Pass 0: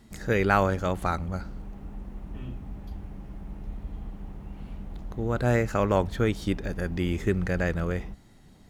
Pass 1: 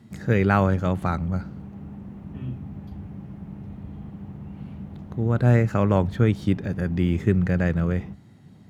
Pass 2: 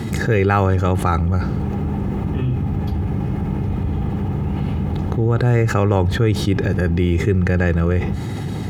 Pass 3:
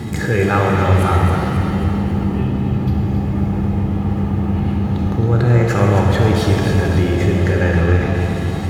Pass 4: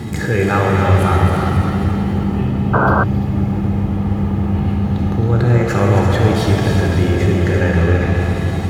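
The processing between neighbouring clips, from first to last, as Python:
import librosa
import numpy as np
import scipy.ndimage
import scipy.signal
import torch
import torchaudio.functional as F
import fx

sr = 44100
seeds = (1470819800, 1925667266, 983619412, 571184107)

y1 = scipy.signal.sosfilt(scipy.signal.butter(4, 93.0, 'highpass', fs=sr, output='sos'), x)
y1 = fx.bass_treble(y1, sr, bass_db=10, treble_db=-6)
y2 = y1 + 0.45 * np.pad(y1, (int(2.4 * sr / 1000.0), 0))[:len(y1)]
y2 = fx.env_flatten(y2, sr, amount_pct=70)
y2 = y2 * librosa.db_to_amplitude(1.0)
y3 = fx.echo_feedback(y2, sr, ms=270, feedback_pct=54, wet_db=-8.0)
y3 = fx.rev_shimmer(y3, sr, seeds[0], rt60_s=2.1, semitones=7, shimmer_db=-8, drr_db=0.0)
y3 = y3 * librosa.db_to_amplitude(-1.5)
y4 = y3 + 10.0 ** (-8.0 / 20.0) * np.pad(y3, (int(341 * sr / 1000.0), 0))[:len(y3)]
y4 = fx.spec_paint(y4, sr, seeds[1], shape='noise', start_s=2.73, length_s=0.31, low_hz=270.0, high_hz=1600.0, level_db=-15.0)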